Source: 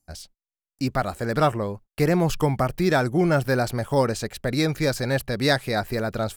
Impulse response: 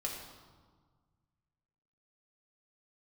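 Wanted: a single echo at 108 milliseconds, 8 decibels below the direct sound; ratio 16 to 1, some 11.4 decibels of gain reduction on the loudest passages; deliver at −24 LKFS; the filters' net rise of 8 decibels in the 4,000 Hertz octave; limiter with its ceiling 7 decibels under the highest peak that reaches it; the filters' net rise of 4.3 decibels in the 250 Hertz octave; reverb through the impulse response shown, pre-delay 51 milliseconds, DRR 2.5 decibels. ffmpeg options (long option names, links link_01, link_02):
-filter_complex "[0:a]equalizer=frequency=250:width_type=o:gain=6,equalizer=frequency=4000:width_type=o:gain=9,acompressor=threshold=-24dB:ratio=16,alimiter=limit=-21.5dB:level=0:latency=1,aecho=1:1:108:0.398,asplit=2[link_01][link_02];[1:a]atrim=start_sample=2205,adelay=51[link_03];[link_02][link_03]afir=irnorm=-1:irlink=0,volume=-4.5dB[link_04];[link_01][link_04]amix=inputs=2:normalize=0,volume=5.5dB"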